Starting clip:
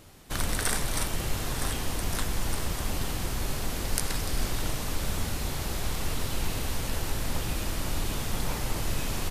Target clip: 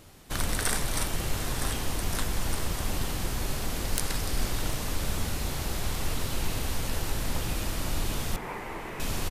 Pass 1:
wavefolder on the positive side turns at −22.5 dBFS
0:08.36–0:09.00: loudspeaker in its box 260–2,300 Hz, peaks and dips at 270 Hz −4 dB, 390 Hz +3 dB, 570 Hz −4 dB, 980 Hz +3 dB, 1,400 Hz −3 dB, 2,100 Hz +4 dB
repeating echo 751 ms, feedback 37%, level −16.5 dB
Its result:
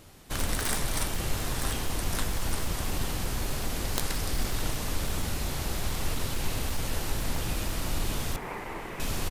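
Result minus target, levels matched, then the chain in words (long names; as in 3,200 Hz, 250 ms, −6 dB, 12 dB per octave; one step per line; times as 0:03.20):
wavefolder on the positive side: distortion +17 dB
wavefolder on the positive side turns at −10.5 dBFS
0:08.36–0:09.00: loudspeaker in its box 260–2,300 Hz, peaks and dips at 270 Hz −4 dB, 390 Hz +3 dB, 570 Hz −4 dB, 980 Hz +3 dB, 1,400 Hz −3 dB, 2,100 Hz +4 dB
repeating echo 751 ms, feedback 37%, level −16.5 dB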